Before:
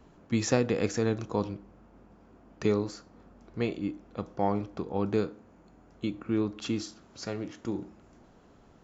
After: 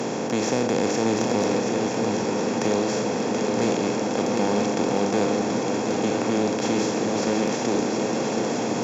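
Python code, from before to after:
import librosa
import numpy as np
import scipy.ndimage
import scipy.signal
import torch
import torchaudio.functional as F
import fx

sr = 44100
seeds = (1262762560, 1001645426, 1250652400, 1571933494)

y = fx.bin_compress(x, sr, power=0.2)
y = scipy.signal.sosfilt(scipy.signal.butter(4, 130.0, 'highpass', fs=sr, output='sos'), y)
y = fx.echo_swing(y, sr, ms=973, ratio=3, feedback_pct=53, wet_db=-6.0)
y = fx.cheby_harmonics(y, sr, harmonics=(5,), levels_db=(-25,), full_scale_db=-6.0)
y = F.gain(torch.from_numpy(y), -3.5).numpy()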